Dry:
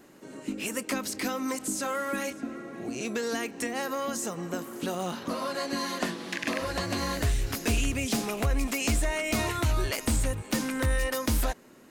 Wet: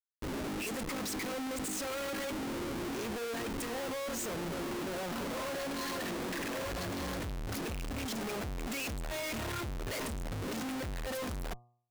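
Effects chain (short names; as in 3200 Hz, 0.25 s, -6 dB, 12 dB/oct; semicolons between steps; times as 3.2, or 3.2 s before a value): formant sharpening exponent 1.5; Schmitt trigger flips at -45 dBFS; de-hum 120.3 Hz, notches 10; gain -7 dB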